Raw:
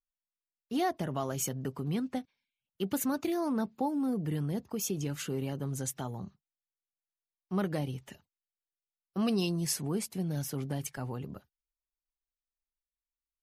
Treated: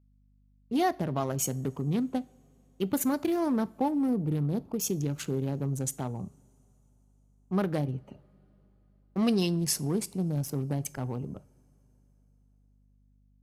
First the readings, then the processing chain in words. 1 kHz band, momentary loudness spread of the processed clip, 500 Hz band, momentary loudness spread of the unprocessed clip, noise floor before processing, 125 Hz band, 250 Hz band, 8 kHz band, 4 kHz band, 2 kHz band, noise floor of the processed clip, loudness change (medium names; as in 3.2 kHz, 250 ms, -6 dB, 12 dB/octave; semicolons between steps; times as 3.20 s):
+3.0 dB, 9 LU, +3.5 dB, 9 LU, under -85 dBFS, +4.0 dB, +4.0 dB, +3.0 dB, +2.0 dB, +1.5 dB, -64 dBFS, +3.5 dB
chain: local Wiener filter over 25 samples; two-slope reverb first 0.39 s, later 4.1 s, from -22 dB, DRR 17 dB; hum 50 Hz, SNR 32 dB; trim +4 dB